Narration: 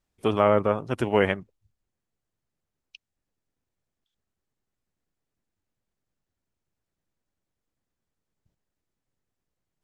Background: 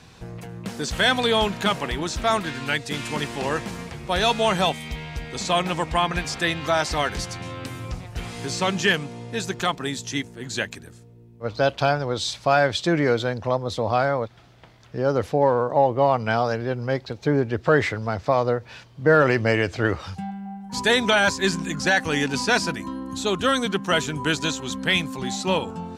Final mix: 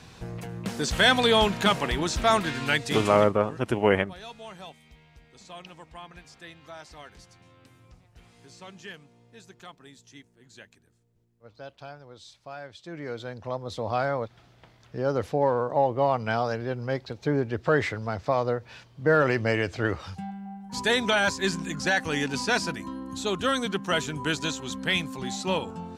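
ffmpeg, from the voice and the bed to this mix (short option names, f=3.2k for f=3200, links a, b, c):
-filter_complex "[0:a]adelay=2700,volume=0dB[a];[1:a]volume=17.5dB,afade=t=out:st=2.99:d=0.33:silence=0.0794328,afade=t=in:st=12.82:d=1.35:silence=0.133352[b];[a][b]amix=inputs=2:normalize=0"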